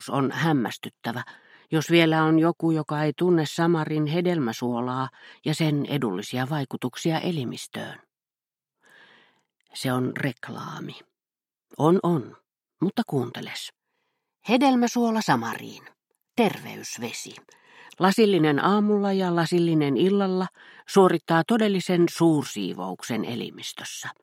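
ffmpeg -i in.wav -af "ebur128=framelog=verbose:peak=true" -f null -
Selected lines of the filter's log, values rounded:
Integrated loudness:
  I:         -24.2 LUFS
  Threshold: -35.1 LUFS
Loudness range:
  LRA:        10.1 LU
  Threshold: -45.2 LUFS
  LRA low:   -32.4 LUFS
  LRA high:  -22.3 LUFS
True peak:
  Peak:       -4.9 dBFS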